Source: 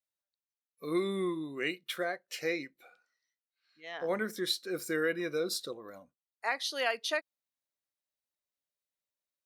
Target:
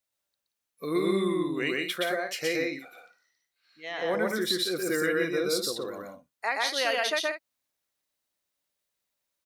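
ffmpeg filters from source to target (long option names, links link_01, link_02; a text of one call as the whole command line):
ffmpeg -i in.wav -filter_complex "[0:a]asplit=2[link_01][link_02];[link_02]acompressor=threshold=-40dB:ratio=6,volume=2.5dB[link_03];[link_01][link_03]amix=inputs=2:normalize=0,aecho=1:1:122.4|177.8:0.891|0.355" out.wav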